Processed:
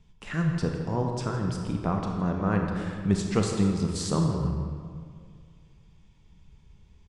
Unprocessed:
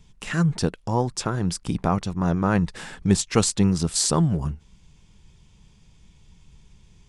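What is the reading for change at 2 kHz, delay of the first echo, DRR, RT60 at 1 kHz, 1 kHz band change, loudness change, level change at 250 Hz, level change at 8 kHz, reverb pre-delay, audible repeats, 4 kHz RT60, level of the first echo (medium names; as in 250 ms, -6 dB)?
-5.0 dB, 162 ms, 1.5 dB, 2.0 s, -5.0 dB, -4.5 dB, -3.5 dB, -13.0 dB, 28 ms, 1, 1.2 s, -14.5 dB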